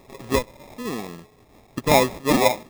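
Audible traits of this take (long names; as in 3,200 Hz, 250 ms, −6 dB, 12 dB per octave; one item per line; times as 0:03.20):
a quantiser's noise floor 10 bits, dither triangular
phaser sweep stages 8, 1.1 Hz, lowest notch 540–1,100 Hz
aliases and images of a low sample rate 1,500 Hz, jitter 0%
amplitude modulation by smooth noise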